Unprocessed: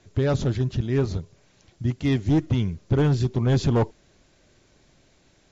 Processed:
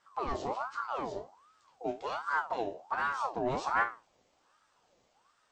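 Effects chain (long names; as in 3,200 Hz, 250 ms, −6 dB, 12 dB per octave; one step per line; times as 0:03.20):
resonators tuned to a chord D#2 major, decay 0.29 s
ring modulator whose carrier an LFO sweeps 890 Hz, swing 45%, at 1.3 Hz
level +2.5 dB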